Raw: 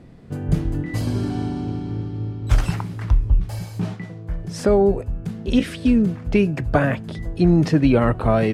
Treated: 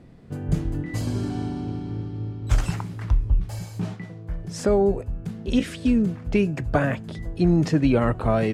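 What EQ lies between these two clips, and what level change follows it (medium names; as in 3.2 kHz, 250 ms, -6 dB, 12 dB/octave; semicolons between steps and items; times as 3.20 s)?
dynamic bell 7.1 kHz, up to +6 dB, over -56 dBFS, Q 2.7; -3.5 dB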